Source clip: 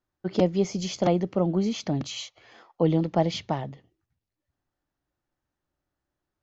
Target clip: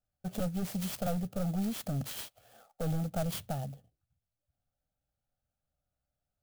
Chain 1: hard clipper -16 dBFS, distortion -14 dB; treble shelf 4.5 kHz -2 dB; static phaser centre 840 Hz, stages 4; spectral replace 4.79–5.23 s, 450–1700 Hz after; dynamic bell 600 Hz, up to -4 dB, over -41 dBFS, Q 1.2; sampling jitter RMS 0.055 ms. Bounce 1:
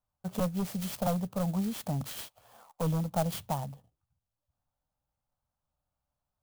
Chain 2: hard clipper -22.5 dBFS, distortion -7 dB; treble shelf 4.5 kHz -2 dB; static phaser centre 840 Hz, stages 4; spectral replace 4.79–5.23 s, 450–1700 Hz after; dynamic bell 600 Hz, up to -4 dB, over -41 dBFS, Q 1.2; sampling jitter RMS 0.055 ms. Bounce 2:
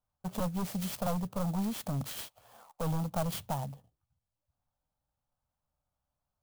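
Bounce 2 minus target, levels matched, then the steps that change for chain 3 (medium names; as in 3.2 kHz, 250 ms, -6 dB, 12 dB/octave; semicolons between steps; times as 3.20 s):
1 kHz band +4.0 dB
add after hard clipper: Butterworth band-stop 1 kHz, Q 2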